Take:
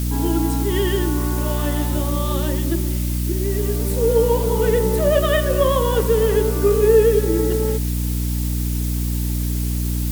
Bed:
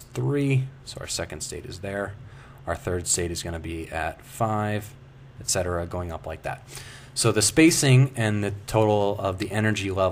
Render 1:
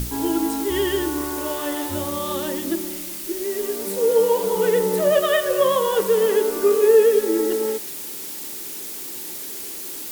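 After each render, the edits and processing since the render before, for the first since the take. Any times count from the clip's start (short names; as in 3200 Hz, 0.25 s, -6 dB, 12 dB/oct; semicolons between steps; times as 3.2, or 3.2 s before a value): notches 60/120/180/240/300 Hz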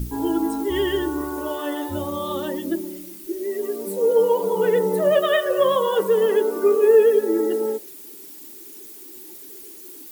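denoiser 13 dB, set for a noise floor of -33 dBFS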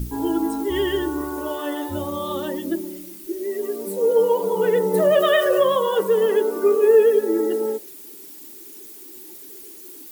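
4.94–5.62 fast leveller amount 50%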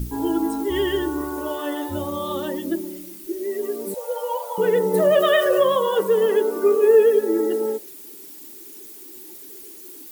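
3.94–4.58 brick-wall FIR high-pass 490 Hz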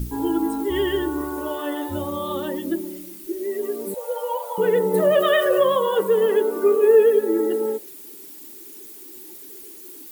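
dynamic EQ 5700 Hz, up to -6 dB, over -50 dBFS, Q 1.6; notch 650 Hz, Q 16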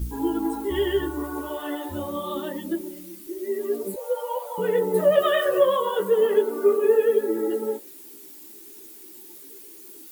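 chorus voices 4, 1 Hz, delay 15 ms, depth 3 ms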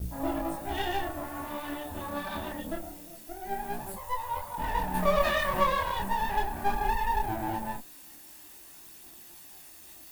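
minimum comb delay 1.1 ms; chorus voices 2, 0.22 Hz, delay 27 ms, depth 4.4 ms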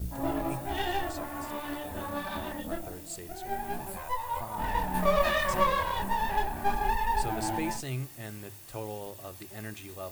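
add bed -18 dB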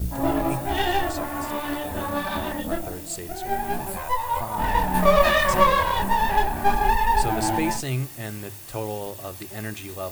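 gain +8 dB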